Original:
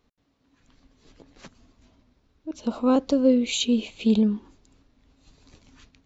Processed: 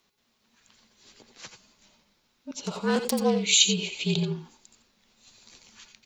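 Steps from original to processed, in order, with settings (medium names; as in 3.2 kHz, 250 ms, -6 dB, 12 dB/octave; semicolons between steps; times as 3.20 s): 2.64–3.43 s: self-modulated delay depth 0.21 ms; tilt EQ +3.5 dB/octave; frequency shift -45 Hz; reverberation, pre-delay 78 ms, DRR 7.5 dB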